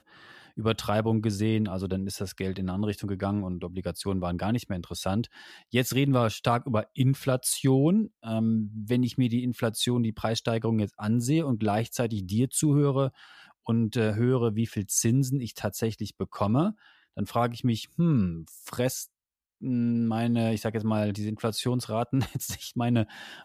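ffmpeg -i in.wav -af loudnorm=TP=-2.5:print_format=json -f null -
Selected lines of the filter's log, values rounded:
"input_i" : "-27.9",
"input_tp" : "-9.2",
"input_lra" : "3.8",
"input_thresh" : "-38.1",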